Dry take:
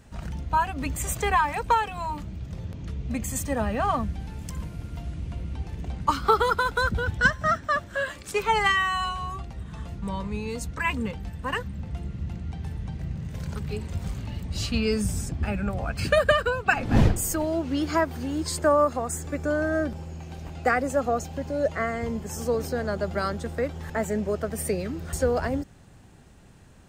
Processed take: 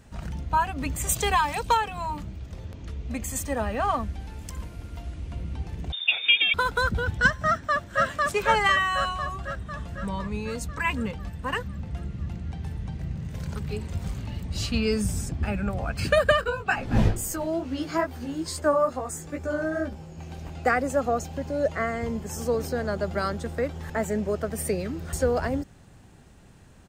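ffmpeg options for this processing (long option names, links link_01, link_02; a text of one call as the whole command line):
ffmpeg -i in.wav -filter_complex "[0:a]asettb=1/sr,asplit=3[link_01][link_02][link_03];[link_01]atrim=end=1.094[link_04];[link_02]atrim=start=1.09:end=1.77,asetpts=PTS-STARTPTS,afade=type=in:duration=0.004:curve=qsin,afade=type=out:start_time=0.676:duration=0.004:curve=qsin,highshelf=frequency=2600:width_type=q:width=1.5:gain=6[link_05];[link_03]atrim=start=1.766[link_06];[link_04][link_05]acrossfade=duration=0.004:curve1=hsin:curve2=qsin[link_07];[link_07][link_06]acrossfade=duration=0.004:curve1=qsin:curve2=hsin,asettb=1/sr,asplit=3[link_08][link_09][link_10];[link_08]atrim=end=2.324[link_11];[link_09]atrim=start=2.32:end=5.32,asetpts=PTS-STARTPTS,afade=type=in:duration=0.004:curve=qsin,afade=type=out:start_time=2.996:duration=0.004:curve=qsin,equalizer=frequency=150:width_type=o:width=1:gain=-8.5[link_12];[link_10]atrim=start=5.316[link_13];[link_11][link_12]acrossfade=duration=0.004:curve1=hsin:curve2=qsin[link_14];[link_14][link_13]acrossfade=duration=0.004:curve1=qsin:curve2=hsin,asettb=1/sr,asplit=3[link_15][link_16][link_17];[link_15]atrim=end=5.924[link_18];[link_16]atrim=start=5.92:end=6.54,asetpts=PTS-STARTPTS,afade=type=in:duration=0.004:curve=qsin,afade=type=out:start_time=0.616:duration=0.004:curve=qsin,lowpass=frequency=3100:width_type=q:width=0.5098,lowpass=frequency=3100:width_type=q:width=0.6013,lowpass=frequency=3100:width_type=q:width=0.9,lowpass=frequency=3100:width_type=q:width=2.563,afreqshift=-3700[link_19];[link_17]atrim=start=6.536[link_20];[link_18][link_19]acrossfade=duration=0.004:curve1=hsin:curve2=qsin[link_21];[link_21][link_20]acrossfade=duration=0.004:curve1=qsin:curve2=hsin,asplit=2[link_22][link_23];[link_23]afade=type=in:start_time=7.47:duration=0.01,afade=type=out:start_time=8.05:duration=0.01,aecho=0:1:500|1000|1500|2000|2500|3000|3500|4000|4500:0.944061|0.566437|0.339862|0.203917|0.12235|0.0734102|0.0440461|0.0264277|0.0158566[link_24];[link_22][link_24]amix=inputs=2:normalize=0,asettb=1/sr,asplit=3[link_25][link_26][link_27];[link_25]atrim=end=16.414[link_28];[link_26]atrim=start=16.41:end=20.18,asetpts=PTS-STARTPTS,afade=type=in:duration=0.004:curve=qsin,afade=type=out:start_time=3.766:duration=0.004:curve=qsin,flanger=delay=15:depth=4:speed=2.3[link_29];[link_27]atrim=start=20.176[link_30];[link_28][link_29]acrossfade=duration=0.004:curve1=hsin:curve2=qsin[link_31];[link_31][link_30]acrossfade=duration=0.004:curve1=qsin:curve2=hsin" out.wav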